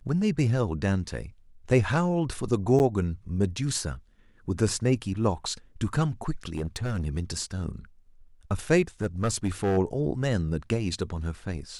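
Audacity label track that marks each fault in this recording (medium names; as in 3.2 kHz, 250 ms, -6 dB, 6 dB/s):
2.790000	2.800000	dropout 9.6 ms
6.520000	7.060000	clipped -25 dBFS
9.020000	9.780000	clipped -20.5 dBFS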